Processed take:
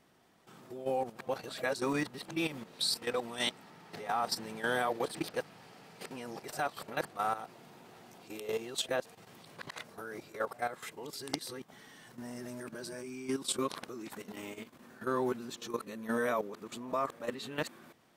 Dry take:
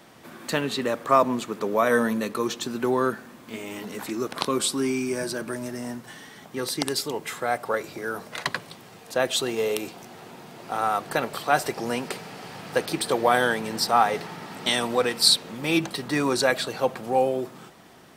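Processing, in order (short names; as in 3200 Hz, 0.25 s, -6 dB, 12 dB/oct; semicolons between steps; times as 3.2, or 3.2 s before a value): whole clip reversed; level quantiser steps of 12 dB; gain -7 dB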